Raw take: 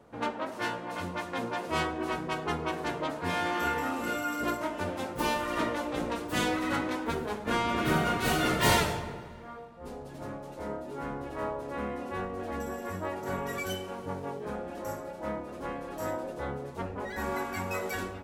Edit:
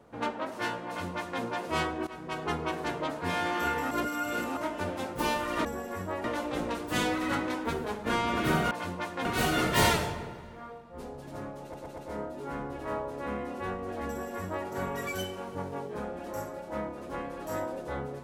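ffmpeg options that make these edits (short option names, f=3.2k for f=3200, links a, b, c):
-filter_complex "[0:a]asplit=11[a][b][c][d][e][f][g][h][i][j][k];[a]atrim=end=2.07,asetpts=PTS-STARTPTS,afade=t=out:st=2.066:d=0.004:c=hsin:silence=0.149624[l];[b]atrim=start=2.07:end=3.912,asetpts=PTS-STARTPTS,afade=t=in:d=0.38:silence=0.149624[m];[c]atrim=start=3.908:end=4.572,asetpts=PTS-STARTPTS,areverse[n];[d]atrim=start=4.568:end=5.652[o];[e]atrim=start=12.588:end=13.182[p];[f]atrim=start=5.648:end=8.122[q];[g]atrim=start=0.868:end=1.412[r];[h]atrim=start=8.118:end=10.612[s];[i]atrim=start=10.488:end=10.612[t];[j]atrim=start=10.488:end=10.612[u];[k]atrim=start=10.488[v];[l][m]concat=n=2:v=0:a=1[w];[w][n]acrossfade=d=0.004:c1=hsin:c2=hsin[x];[x][o]acrossfade=d=0.004:c1=hsin:c2=hsin[y];[y][p]acrossfade=d=0.004:c1=hsin:c2=hsin[z];[z][q]acrossfade=d=0.004:c1=hsin:c2=hsin[aa];[aa][r]acrossfade=d=0.004:c1=hsin:c2=hsin[ab];[ab][s]acrossfade=d=0.004:c1=hsin:c2=hsin[ac];[ac][t]acrossfade=d=0.004:c1=hsin:c2=hsin[ad];[ad][u]acrossfade=d=0.004:c1=hsin:c2=hsin[ae];[ae][v]acrossfade=d=0.004:c1=hsin:c2=hsin"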